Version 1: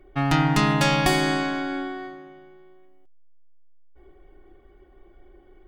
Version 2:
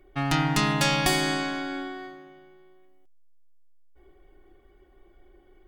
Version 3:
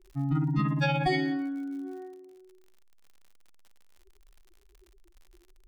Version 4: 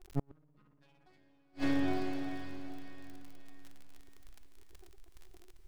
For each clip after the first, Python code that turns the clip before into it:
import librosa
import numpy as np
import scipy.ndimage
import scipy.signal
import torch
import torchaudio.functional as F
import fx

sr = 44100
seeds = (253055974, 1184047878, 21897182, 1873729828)

y1 = fx.high_shelf(x, sr, hz=2800.0, db=7.5)
y1 = y1 * 10.0 ** (-4.5 / 20.0)
y2 = fx.spec_expand(y1, sr, power=3.3)
y2 = fx.dmg_crackle(y2, sr, seeds[0], per_s=77.0, level_db=-44.0)
y2 = y2 * 10.0 ** (-2.0 / 20.0)
y3 = np.maximum(y2, 0.0)
y3 = fx.echo_diffused(y3, sr, ms=470, feedback_pct=42, wet_db=-9)
y3 = fx.gate_flip(y3, sr, shuts_db=-24.0, range_db=-41)
y3 = y3 * 10.0 ** (5.0 / 20.0)